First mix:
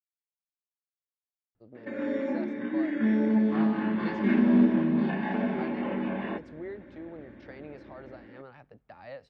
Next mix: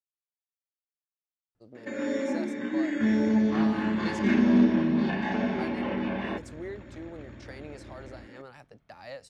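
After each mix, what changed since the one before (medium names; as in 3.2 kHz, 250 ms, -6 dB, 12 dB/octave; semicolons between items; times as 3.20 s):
second sound +10.5 dB; master: remove distance through air 310 m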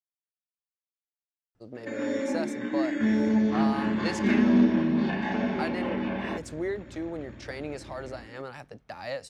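speech +7.5 dB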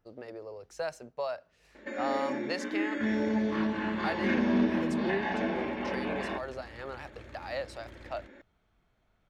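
speech: entry -1.55 s; second sound: remove distance through air 250 m; master: add graphic EQ 125/250/8000 Hz -7/-5/-7 dB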